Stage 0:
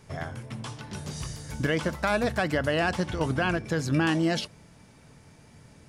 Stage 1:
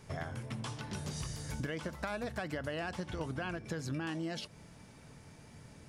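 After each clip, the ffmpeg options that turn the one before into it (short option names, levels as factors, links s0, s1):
-af "acompressor=threshold=0.02:ratio=6,volume=0.841"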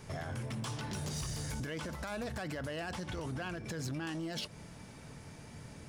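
-filter_complex "[0:a]acrossover=split=4500[s0][s1];[s0]alimiter=level_in=3.76:limit=0.0631:level=0:latency=1:release=25,volume=0.266[s2];[s2][s1]amix=inputs=2:normalize=0,asoftclip=type=hard:threshold=0.0126,volume=1.68"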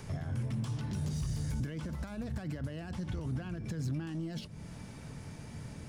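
-filter_complex "[0:a]acrossover=split=260[s0][s1];[s1]acompressor=threshold=0.001:ratio=2.5[s2];[s0][s2]amix=inputs=2:normalize=0,volume=2"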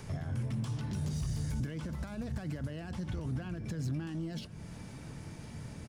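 -af "aecho=1:1:1058:0.112"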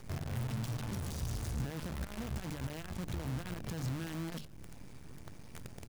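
-af "acrusher=bits=7:dc=4:mix=0:aa=0.000001,lowshelf=f=74:g=7.5,bandreject=f=50:t=h:w=6,bandreject=f=100:t=h:w=6,bandreject=f=150:t=h:w=6,volume=0.631"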